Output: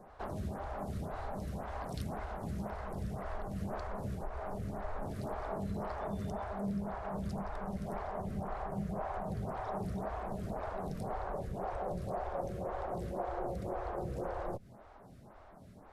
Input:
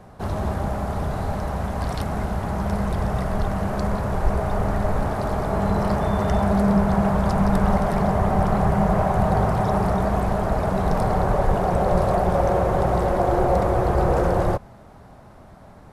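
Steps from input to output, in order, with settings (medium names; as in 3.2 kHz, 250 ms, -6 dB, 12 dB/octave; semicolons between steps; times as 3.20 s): compression, threshold -26 dBFS, peak gain reduction 12.5 dB; lamp-driven phase shifter 1.9 Hz; trim -6 dB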